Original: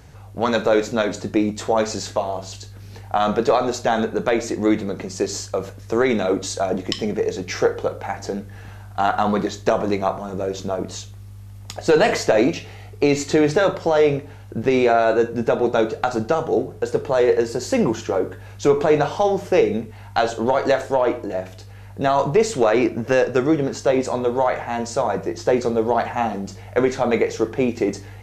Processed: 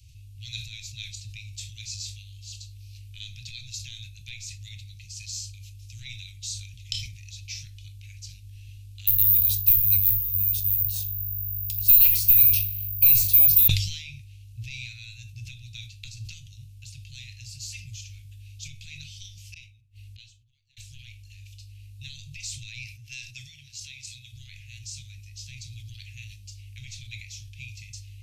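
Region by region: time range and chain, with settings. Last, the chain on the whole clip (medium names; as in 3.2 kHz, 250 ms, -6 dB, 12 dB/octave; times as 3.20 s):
9.07–13.68 s: bass shelf 140 Hz +11.5 dB + careless resampling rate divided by 3×, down filtered, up zero stuff
19.54–20.77 s: inverted gate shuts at -24 dBFS, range -29 dB + tape noise reduction on one side only decoder only
22.84–24.32 s: bass shelf 230 Hz -11.5 dB + tape noise reduction on one side only decoder only
whole clip: Chebyshev band-stop 120–2500 Hz, order 5; dynamic bell 2.9 kHz, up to -6 dB, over -51 dBFS, Q 7.3; decay stretcher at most 67 dB/s; trim -4.5 dB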